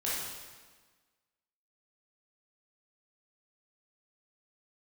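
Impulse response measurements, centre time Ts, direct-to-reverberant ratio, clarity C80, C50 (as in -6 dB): 95 ms, -8.5 dB, 1.5 dB, -2.0 dB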